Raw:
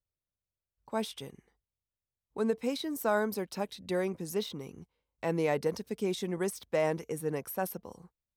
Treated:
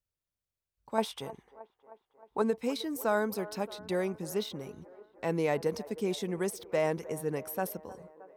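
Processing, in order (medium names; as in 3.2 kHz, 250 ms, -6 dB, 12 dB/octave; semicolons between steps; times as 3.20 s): 0.98–2.42 s: peaking EQ 890 Hz +11.5 dB 1.4 oct; feedback echo behind a band-pass 311 ms, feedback 66%, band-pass 740 Hz, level -16 dB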